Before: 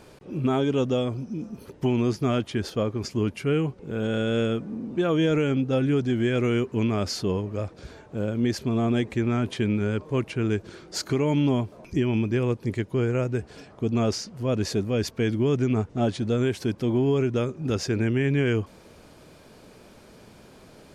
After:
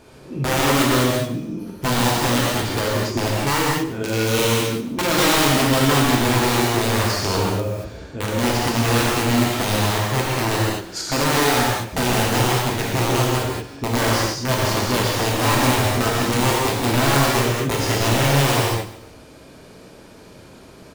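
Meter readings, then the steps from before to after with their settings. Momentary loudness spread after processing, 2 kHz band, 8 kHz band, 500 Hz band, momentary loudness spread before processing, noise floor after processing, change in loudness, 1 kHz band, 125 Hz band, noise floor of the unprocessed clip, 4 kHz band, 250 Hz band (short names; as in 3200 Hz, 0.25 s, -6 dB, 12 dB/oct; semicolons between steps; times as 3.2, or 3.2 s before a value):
7 LU, +13.0 dB, +17.0 dB, +4.0 dB, 8 LU, -44 dBFS, +6.5 dB, +15.5 dB, +5.0 dB, -51 dBFS, +14.0 dB, +2.5 dB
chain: wrapped overs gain 18 dB; on a send: feedback echo 0.144 s, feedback 30%, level -16 dB; on the sum: non-linear reverb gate 0.26 s flat, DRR -5 dB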